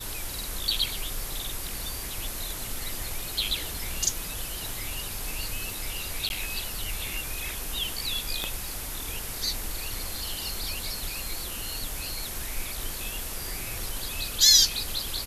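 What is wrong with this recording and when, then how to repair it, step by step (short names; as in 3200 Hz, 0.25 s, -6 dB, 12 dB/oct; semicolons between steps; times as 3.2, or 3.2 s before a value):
6.29–6.3 gap 11 ms
8.44 pop -14 dBFS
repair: de-click; interpolate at 6.29, 11 ms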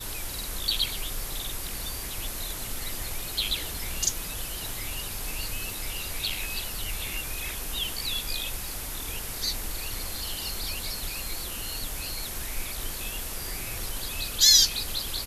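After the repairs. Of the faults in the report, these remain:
8.44 pop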